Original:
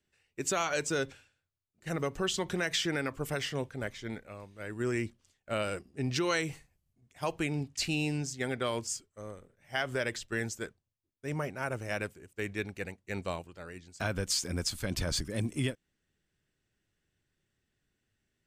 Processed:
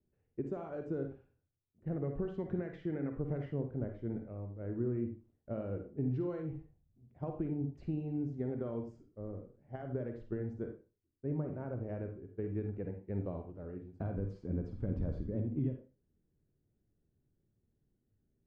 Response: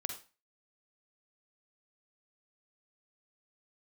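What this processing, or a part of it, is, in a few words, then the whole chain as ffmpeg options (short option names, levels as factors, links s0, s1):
television next door: -filter_complex "[0:a]acompressor=threshold=0.02:ratio=6,lowpass=440[s0];[1:a]atrim=start_sample=2205[s1];[s0][s1]afir=irnorm=-1:irlink=0,asettb=1/sr,asplit=3[s2][s3][s4];[s2]atrim=end=2.044[s5];[s3]atrim=start=2.04:end=3.51,asetpts=PTS-STARTPTS,afade=t=in:d=0.004:c=qsin,afade=t=out:st=1.466:d=0.004:c=qsin,equalizer=f=2000:w=2.1:g=7[s6];[s4]atrim=start=3.506[s7];[s5][s6]acrossfade=d=0.004:c1=hsin:c2=qsin[s8];[s8][s7]acrossfade=d=0.004:c1=qsin:c2=hsin,volume=1.68"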